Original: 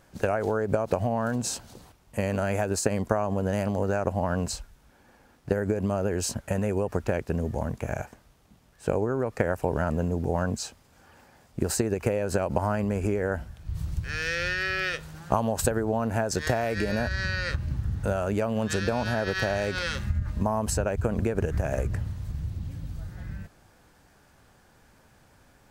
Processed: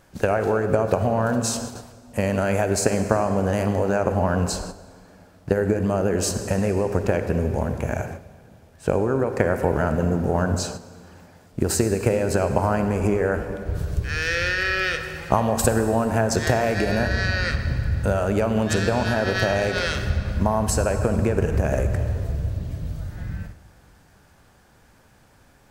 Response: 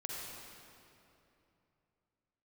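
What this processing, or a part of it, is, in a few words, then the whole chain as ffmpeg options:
keyed gated reverb: -filter_complex "[0:a]asplit=3[s0][s1][s2];[1:a]atrim=start_sample=2205[s3];[s1][s3]afir=irnorm=-1:irlink=0[s4];[s2]apad=whole_len=1133702[s5];[s4][s5]sidechaingate=range=0.355:threshold=0.00501:ratio=16:detection=peak,volume=0.708[s6];[s0][s6]amix=inputs=2:normalize=0,volume=1.19"

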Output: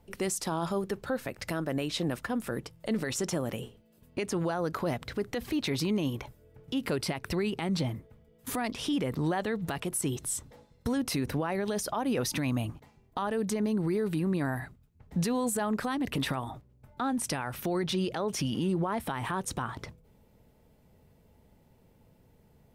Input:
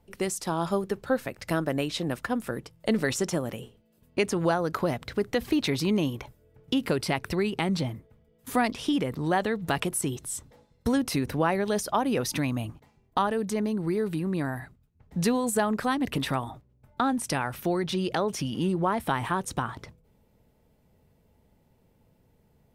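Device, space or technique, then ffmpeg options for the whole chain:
stacked limiters: -af "alimiter=limit=0.126:level=0:latency=1:release=282,alimiter=limit=0.0841:level=0:latency=1:release=12,alimiter=level_in=1.06:limit=0.0631:level=0:latency=1:release=187,volume=0.944,volume=1.33"

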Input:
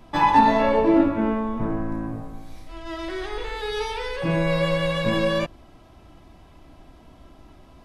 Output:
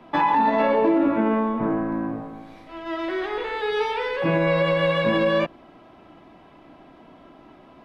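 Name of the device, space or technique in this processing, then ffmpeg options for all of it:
DJ mixer with the lows and highs turned down: -filter_complex "[0:a]asettb=1/sr,asplit=3[s0][s1][s2];[s0]atrim=end=0.584[s3];[s1]atrim=start=0.58:end=1.53,asetpts=PTS-STARTPTS,afade=t=in:d=0.004:c=qsin,afade=t=out:st=0.946:d=0.004:c=qsin,equalizer=f=6500:t=o:w=1.6:g=4.5[s4];[s2]atrim=start=1.526[s5];[s3][s4]acrossfade=d=0.004:c1=hsin:c2=qsin[s6];[s6][s5]acrossfade=d=0.004:c1=qsin:c2=hsin,acrossover=split=160 3400:gain=0.0891 1 0.141[s7][s8][s9];[s7][s8][s9]amix=inputs=3:normalize=0,alimiter=limit=0.15:level=0:latency=1:release=56,volume=1.68"

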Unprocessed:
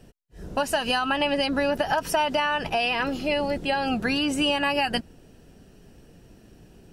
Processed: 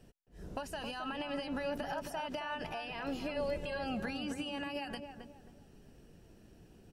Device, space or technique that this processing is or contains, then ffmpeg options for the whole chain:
de-esser from a sidechain: -filter_complex "[0:a]asettb=1/sr,asplit=3[s0][s1][s2];[s0]atrim=end=3.364[s3];[s1]atrim=start=3.36:end=3.79,asetpts=PTS-STARTPTS,afade=t=in:d=0.004:c=qsin,afade=t=out:st=0.426:d=0.004:c=qsin,aecho=1:1:1.9:0.78,atrim=end_sample=18963[s4];[s2]atrim=start=3.786[s5];[s3][s4]acrossfade=d=0.004:c1=hsin:c2=qsin[s6];[s6][s5]acrossfade=d=0.004:c1=qsin:c2=hsin,asplit=2[s7][s8];[s8]highpass=f=6200:p=1,apad=whole_len=305463[s9];[s7][s9]sidechaincompress=threshold=0.0112:ratio=8:attack=0.95:release=98,asplit=2[s10][s11];[s11]adelay=268,lowpass=f=1300:p=1,volume=0.501,asplit=2[s12][s13];[s13]adelay=268,lowpass=f=1300:p=1,volume=0.36,asplit=2[s14][s15];[s15]adelay=268,lowpass=f=1300:p=1,volume=0.36,asplit=2[s16][s17];[s17]adelay=268,lowpass=f=1300:p=1,volume=0.36[s18];[s10][s12][s14][s16][s18]amix=inputs=5:normalize=0,volume=0.376"

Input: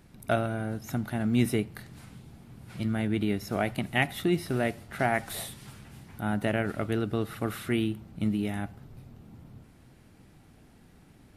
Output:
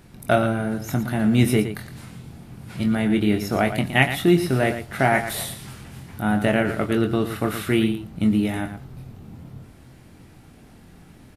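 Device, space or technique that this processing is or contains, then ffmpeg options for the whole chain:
slapback doubling: -filter_complex "[0:a]asplit=3[s0][s1][s2];[s1]adelay=23,volume=0.447[s3];[s2]adelay=115,volume=0.316[s4];[s0][s3][s4]amix=inputs=3:normalize=0,volume=2.24"

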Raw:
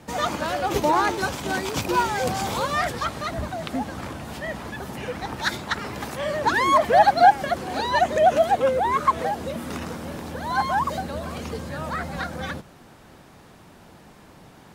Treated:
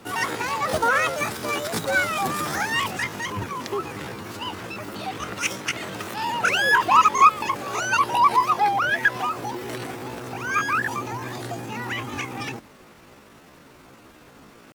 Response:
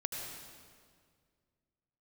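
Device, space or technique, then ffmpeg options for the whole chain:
chipmunk voice: -af "asetrate=68011,aresample=44100,atempo=0.64842"

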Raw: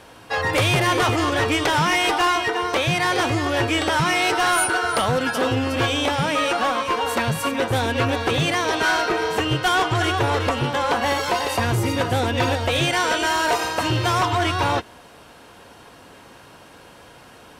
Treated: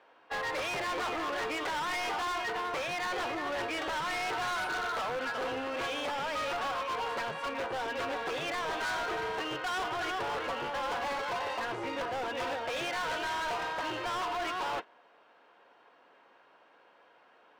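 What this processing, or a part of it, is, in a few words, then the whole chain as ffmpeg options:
walkie-talkie: -af "highpass=470,lowpass=2400,asoftclip=type=hard:threshold=0.0531,agate=range=0.447:threshold=0.02:ratio=16:detection=peak,volume=0.501"

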